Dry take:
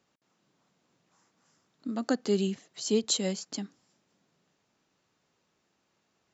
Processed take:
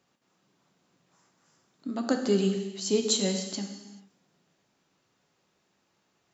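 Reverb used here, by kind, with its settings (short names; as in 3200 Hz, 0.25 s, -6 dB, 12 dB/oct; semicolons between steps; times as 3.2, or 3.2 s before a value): non-linear reverb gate 0.46 s falling, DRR 4 dB; gain +1 dB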